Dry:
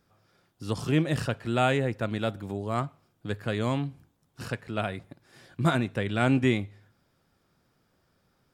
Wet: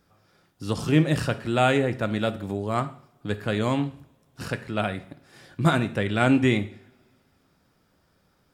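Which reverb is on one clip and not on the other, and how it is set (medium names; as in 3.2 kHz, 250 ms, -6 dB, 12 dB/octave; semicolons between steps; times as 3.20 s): two-slope reverb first 0.5 s, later 2.2 s, from -26 dB, DRR 10 dB; trim +3.5 dB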